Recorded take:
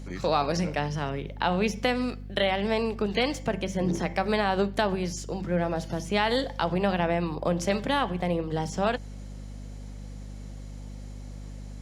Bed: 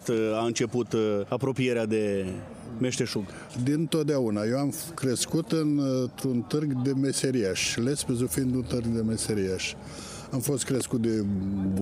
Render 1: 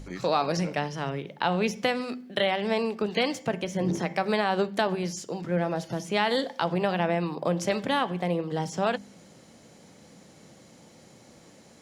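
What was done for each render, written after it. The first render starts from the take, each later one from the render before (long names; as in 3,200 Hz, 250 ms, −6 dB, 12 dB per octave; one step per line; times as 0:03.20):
hum removal 50 Hz, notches 5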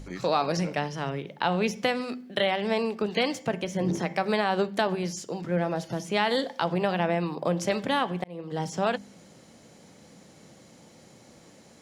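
0:08.24–0:08.64: fade in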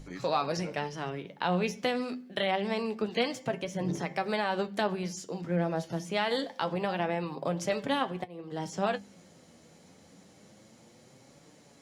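flanger 0.26 Hz, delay 6.5 ms, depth 5.9 ms, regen +50%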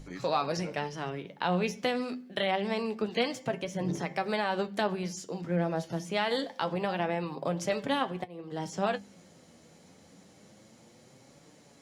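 no processing that can be heard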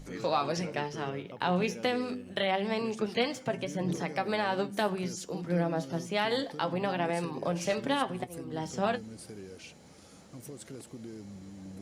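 mix in bed −18 dB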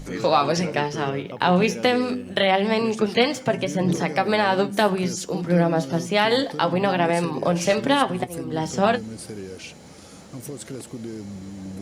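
level +10 dB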